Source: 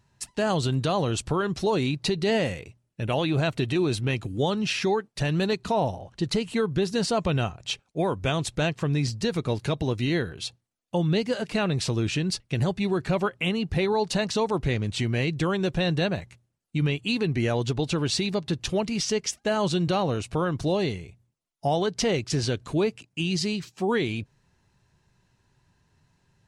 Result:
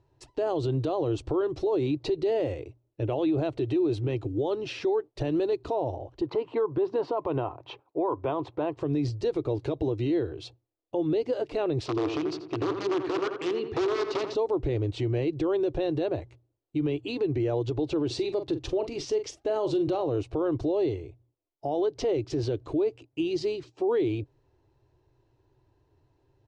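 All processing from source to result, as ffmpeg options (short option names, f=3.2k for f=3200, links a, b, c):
-filter_complex "[0:a]asettb=1/sr,asplit=3[a][b][c];[a]atrim=end=6.214[d];[b]atrim=start=6.21:end=8.77,asetpts=PTS-STARTPTS,afade=t=in:d=0.004:c=qsin,afade=t=out:st=2.556:d=0.004:c=qsin,highpass=140,lowpass=2.7k,equalizer=f=1k:w=2.4:g=13[e];[c]atrim=start=8.766[f];[d][e]acrossfade=d=0.004:c1=hsin:c2=qsin[g];[g][f]acrossfade=d=0.004:c1=qsin:c2=hsin,asettb=1/sr,asplit=3[h][i][j];[h]atrim=end=11.864[k];[i]atrim=start=11.86:end=14.35,asetpts=PTS-STARTPTS,afade=t=in:d=0.004:c=qsin,afade=t=out:st=2.486:d=0.004:c=qsin,aeval=exprs='(mod(8.41*val(0)+1,2)-1)/8.41':c=same,highpass=170,equalizer=f=570:t=q:w=4:g=-10,equalizer=f=830:t=q:w=4:g=-6,equalizer=f=1.2k:t=q:w=4:g=6,lowpass=f=6.7k:w=0.5412,lowpass=f=6.7k:w=1.3066,asplit=2[l][m];[m]adelay=85,lowpass=f=2.3k:p=1,volume=-8dB,asplit=2[n][o];[o]adelay=85,lowpass=f=2.3k:p=1,volume=0.52,asplit=2[p][q];[q]adelay=85,lowpass=f=2.3k:p=1,volume=0.52,asplit=2[r][s];[s]adelay=85,lowpass=f=2.3k:p=1,volume=0.52,asplit=2[t][u];[u]adelay=85,lowpass=f=2.3k:p=1,volume=0.52,asplit=2[v][w];[w]adelay=85,lowpass=f=2.3k:p=1,volume=0.52[x];[l][n][p][r][t][v][x]amix=inputs=7:normalize=0,atrim=end_sample=109809[y];[j]atrim=start=14.346[z];[k][y]acrossfade=d=0.004:c1=hsin:c2=qsin[aa];[aa][z]acrossfade=d=0.004:c1=qsin:c2=hsin,asettb=1/sr,asplit=3[ab][ac][ad];[ab]atrim=end=18.064[ae];[ac]atrim=start=18.06:end=20.07,asetpts=PTS-STARTPTS,afade=t=in:d=0.004:c=qsin,afade=t=out:st=2.006:d=0.004:c=qsin,highshelf=f=8.1k:g=6,asplit=2[af][ag];[ag]adelay=42,volume=-12dB[ah];[af][ah]amix=inputs=2:normalize=0,atrim=end_sample=88641[ai];[ad]atrim=start=20.066[aj];[ae][ai]acrossfade=d=0.004:c1=hsin:c2=qsin[ak];[ak][aj]acrossfade=d=0.004:c1=qsin:c2=hsin,firequalizer=gain_entry='entry(130,0);entry(190,-25);entry(300,9);entry(510,4);entry(1600,-11);entry(3400,-8)':delay=0.05:min_phase=1,alimiter=limit=-19.5dB:level=0:latency=1:release=62,lowpass=4.6k"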